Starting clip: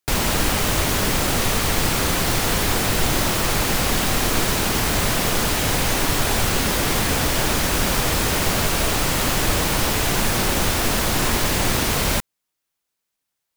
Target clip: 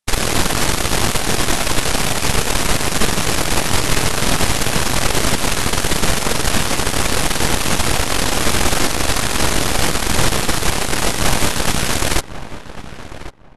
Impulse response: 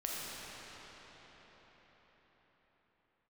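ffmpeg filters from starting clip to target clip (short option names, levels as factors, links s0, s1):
-filter_complex "[0:a]aeval=exprs='0.501*(cos(1*acos(clip(val(0)/0.501,-1,1)))-cos(1*PI/2))+0.178*(cos(6*acos(clip(val(0)/0.501,-1,1)))-cos(6*PI/2))+0.00794*(cos(7*acos(clip(val(0)/0.501,-1,1)))-cos(7*PI/2))':c=same,asetrate=24750,aresample=44100,atempo=1.7818,asplit=2[s0][s1];[s1]adelay=1096,lowpass=f=1900:p=1,volume=0.237,asplit=2[s2][s3];[s3]adelay=1096,lowpass=f=1900:p=1,volume=0.19[s4];[s0][s2][s4]amix=inputs=3:normalize=0"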